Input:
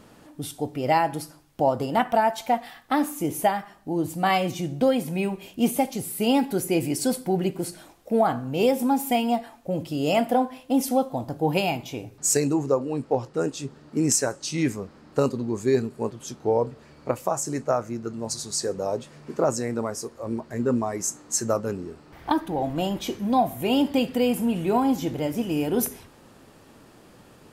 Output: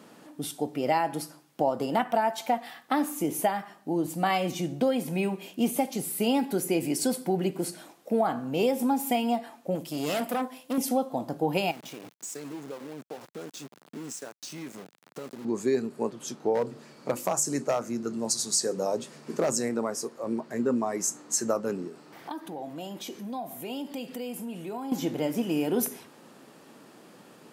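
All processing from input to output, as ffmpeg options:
-filter_complex "[0:a]asettb=1/sr,asplit=3[s0][s1][s2];[s0]atrim=end=9.754[s3];[s1]atrim=start=9.75:end=10.78,asetpts=PTS-STARTPTS,afade=t=in:d=0.004:c=qsin,afade=t=out:st=1.026:d=0.004:c=qsin,highshelf=f=5200:g=11,aeval=exprs='(tanh(15.8*val(0)+0.75)-tanh(0.75))/15.8':c=same[s4];[s2]atrim=start=10.776[s5];[s3][s4]acrossfade=d=0.004:c1=hsin:c2=qsin[s6];[s6][s5]acrossfade=d=0.004:c1=qsin:c2=hsin,asettb=1/sr,asplit=3[s7][s8][s9];[s7]atrim=end=11.714[s10];[s8]atrim=start=11.71:end=15.45,asetpts=PTS-STARTPTS,afade=t=in:d=0.004:c=qsin,afade=t=out:st=3.736:d=0.004:c=qsin,acompressor=threshold=0.0141:ratio=5:attack=3.2:release=140:knee=1:detection=peak,aeval=exprs='val(0)*gte(abs(val(0)),0.00794)':c=same[s11];[s9]atrim=start=15.446[s12];[s10][s11]acrossfade=d=0.004:c1=hsin:c2=qsin[s13];[s13][s12]acrossfade=d=0.004:c1=qsin:c2=hsin,asettb=1/sr,asplit=3[s14][s15][s16];[s14]atrim=end=16.544[s17];[s15]atrim=start=16.54:end=19.69,asetpts=PTS-STARTPTS,afade=t=in:d=0.004:c=qsin,afade=t=out:st=3.146:d=0.004:c=qsin,bandreject=f=50:t=h:w=6,bandreject=f=100:t=h:w=6,bandreject=f=150:t=h:w=6,bandreject=f=200:t=h:w=6,bandreject=f=250:t=h:w=6,bandreject=f=300:t=h:w=6,bandreject=f=350:t=h:w=6,bandreject=f=400:t=h:w=6,asoftclip=type=hard:threshold=0.141,bass=f=250:g=4,treble=f=4000:g=6[s18];[s16]atrim=start=19.686[s19];[s17][s18]acrossfade=d=0.004:c1=hsin:c2=qsin[s20];[s20][s19]acrossfade=d=0.004:c1=qsin:c2=hsin,asettb=1/sr,asplit=3[s21][s22][s23];[s21]atrim=end=21.874[s24];[s22]atrim=start=21.87:end=24.92,asetpts=PTS-STARTPTS,afade=t=in:d=0.004:c=qsin,afade=t=out:st=3.046:d=0.004:c=qsin,bass=f=250:g=-2,treble=f=4000:g=4,acompressor=threshold=0.0112:ratio=2.5:attack=3.2:release=140:knee=1:detection=peak[s25];[s23]atrim=start=24.916[s26];[s24][s25]acrossfade=d=0.004:c1=hsin:c2=qsin[s27];[s27][s26]acrossfade=d=0.004:c1=qsin:c2=hsin,highpass=f=160:w=0.5412,highpass=f=160:w=1.3066,acompressor=threshold=0.0631:ratio=2"

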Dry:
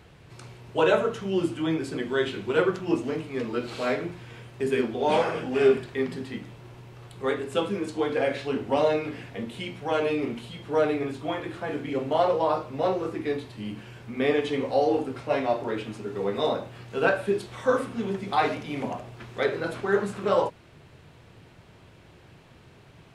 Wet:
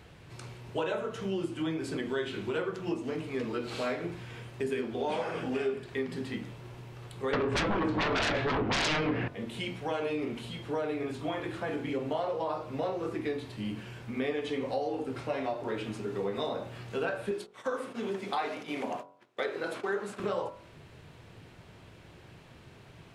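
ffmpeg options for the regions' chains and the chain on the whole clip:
-filter_complex "[0:a]asettb=1/sr,asplit=3[s0][s1][s2];[s0]atrim=end=7.334[s3];[s1]atrim=start=7.33:end=9.28,asetpts=PTS-STARTPTS,afade=t=in:d=0.004:c=qsin,afade=t=out:st=1.946:d=0.004:c=qsin,lowpass=1900,aeval=exprs='0.282*sin(PI/2*8.91*val(0)/0.282)':c=same,asplit=2[s4][s5];[s5]adelay=19,volume=0.251[s6];[s4][s6]amix=inputs=2:normalize=0,atrim=end_sample=85995[s7];[s2]atrim=start=9.276[s8];[s3][s7]acrossfade=d=0.004:c1=hsin:c2=qsin[s9];[s9][s8]acrossfade=d=0.004:c1=qsin:c2=hsin,asettb=1/sr,asplit=3[s10][s11][s12];[s10]atrim=end=17.314[s13];[s11]atrim=start=17.31:end=20.2,asetpts=PTS-STARTPTS,afade=t=in:d=0.004:c=qsin,afade=t=out:st=2.886:d=0.004:c=qsin,agate=range=0.0501:threshold=0.0112:ratio=16:release=100:detection=peak,highpass=270[s14];[s12]atrim=start=20.196[s15];[s13][s14]acrossfade=d=0.004:c1=hsin:c2=qsin[s16];[s16][s15]acrossfade=d=0.004:c1=qsin:c2=hsin,acompressor=threshold=0.0355:ratio=5,bandreject=f=46.61:t=h:w=4,bandreject=f=93.22:t=h:w=4,bandreject=f=139.83:t=h:w=4,bandreject=f=186.44:t=h:w=4,bandreject=f=233.05:t=h:w=4,bandreject=f=279.66:t=h:w=4,bandreject=f=326.27:t=h:w=4,bandreject=f=372.88:t=h:w=4,bandreject=f=419.49:t=h:w=4,bandreject=f=466.1:t=h:w=4,bandreject=f=512.71:t=h:w=4,bandreject=f=559.32:t=h:w=4,bandreject=f=605.93:t=h:w=4,bandreject=f=652.54:t=h:w=4,bandreject=f=699.15:t=h:w=4,bandreject=f=745.76:t=h:w=4,bandreject=f=792.37:t=h:w=4,bandreject=f=838.98:t=h:w=4,bandreject=f=885.59:t=h:w=4,bandreject=f=932.2:t=h:w=4,bandreject=f=978.81:t=h:w=4,bandreject=f=1025.42:t=h:w=4,bandreject=f=1072.03:t=h:w=4,bandreject=f=1118.64:t=h:w=4,bandreject=f=1165.25:t=h:w=4,bandreject=f=1211.86:t=h:w=4,bandreject=f=1258.47:t=h:w=4,bandreject=f=1305.08:t=h:w=4,bandreject=f=1351.69:t=h:w=4,bandreject=f=1398.3:t=h:w=4,bandreject=f=1444.91:t=h:w=4,bandreject=f=1491.52:t=h:w=4"

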